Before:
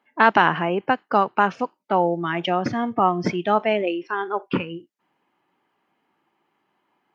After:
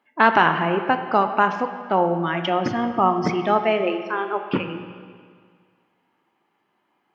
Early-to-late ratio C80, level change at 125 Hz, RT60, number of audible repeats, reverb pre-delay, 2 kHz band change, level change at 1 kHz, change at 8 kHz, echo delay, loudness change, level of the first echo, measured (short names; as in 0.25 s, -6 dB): 9.5 dB, +1.0 dB, 1.9 s, none, 17 ms, +0.5 dB, +1.0 dB, n/a, none, +0.5 dB, none